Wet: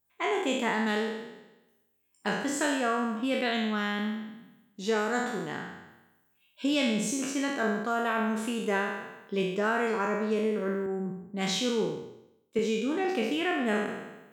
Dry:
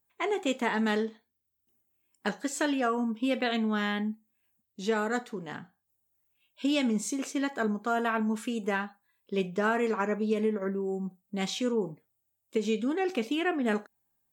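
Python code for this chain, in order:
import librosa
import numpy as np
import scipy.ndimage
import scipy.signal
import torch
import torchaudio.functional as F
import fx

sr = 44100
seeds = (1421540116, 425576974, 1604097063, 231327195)

p1 = fx.spec_trails(x, sr, decay_s=1.03)
p2 = fx.rider(p1, sr, range_db=4, speed_s=0.5)
p3 = p1 + (p2 * 10.0 ** (0.0 / 20.0))
p4 = fx.band_widen(p3, sr, depth_pct=40, at=(10.86, 12.59))
y = p4 * 10.0 ** (-7.5 / 20.0)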